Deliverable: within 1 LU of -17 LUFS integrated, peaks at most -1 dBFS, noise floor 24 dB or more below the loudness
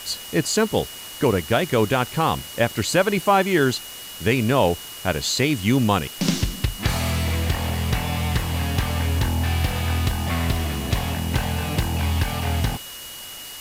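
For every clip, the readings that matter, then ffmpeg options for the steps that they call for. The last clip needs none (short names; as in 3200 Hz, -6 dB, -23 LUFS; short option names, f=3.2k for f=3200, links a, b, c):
steady tone 2900 Hz; tone level -39 dBFS; noise floor -37 dBFS; noise floor target -47 dBFS; loudness -22.5 LUFS; peak -5.5 dBFS; loudness target -17.0 LUFS
-> -af "bandreject=f=2.9k:w=30"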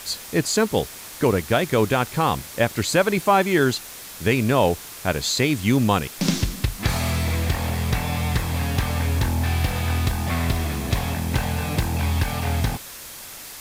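steady tone none; noise floor -39 dBFS; noise floor target -47 dBFS
-> -af "afftdn=nr=8:nf=-39"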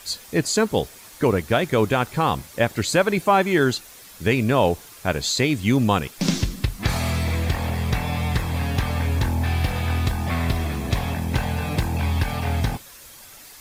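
noise floor -45 dBFS; noise floor target -47 dBFS
-> -af "afftdn=nr=6:nf=-45"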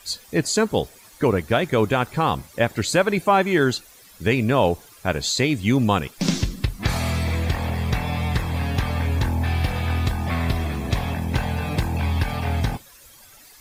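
noise floor -49 dBFS; loudness -23.0 LUFS; peak -6.0 dBFS; loudness target -17.0 LUFS
-> -af "volume=6dB,alimiter=limit=-1dB:level=0:latency=1"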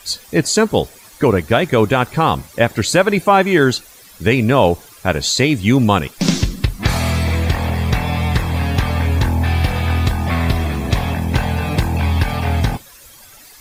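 loudness -17.0 LUFS; peak -1.0 dBFS; noise floor -43 dBFS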